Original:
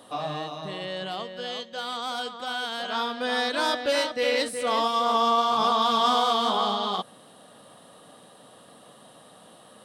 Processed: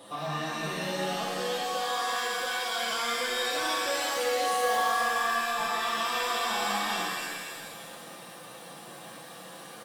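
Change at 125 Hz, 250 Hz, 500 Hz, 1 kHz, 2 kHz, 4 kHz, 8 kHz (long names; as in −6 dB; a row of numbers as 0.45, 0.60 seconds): can't be measured, −6.5 dB, −4.5 dB, −4.0 dB, +2.5 dB, −3.5 dB, +6.0 dB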